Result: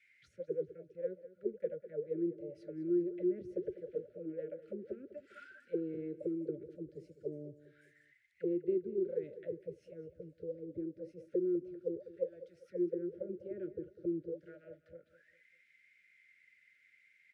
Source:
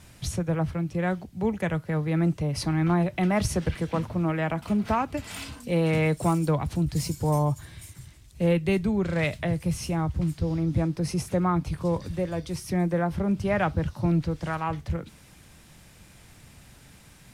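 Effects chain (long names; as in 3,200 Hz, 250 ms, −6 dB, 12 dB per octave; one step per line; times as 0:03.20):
envelope filter 360–2,300 Hz, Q 19, down, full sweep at −21 dBFS
Chebyshev band-stop filter 590–1,400 Hz, order 5
repeating echo 200 ms, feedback 38%, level −15 dB
level +4 dB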